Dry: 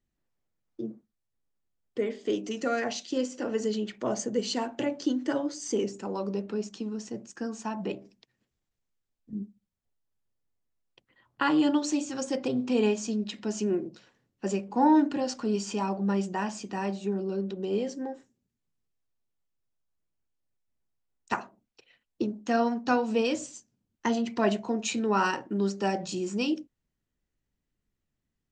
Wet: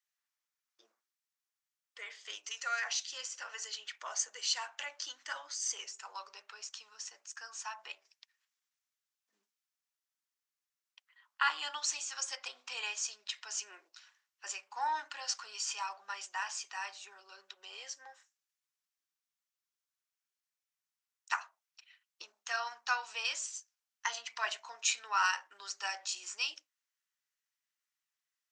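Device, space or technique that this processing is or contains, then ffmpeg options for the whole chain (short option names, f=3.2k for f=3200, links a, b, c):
headphones lying on a table: -af "highpass=f=1.1k:w=0.5412,highpass=f=1.1k:w=1.3066,equalizer=f=5.8k:t=o:w=0.5:g=4"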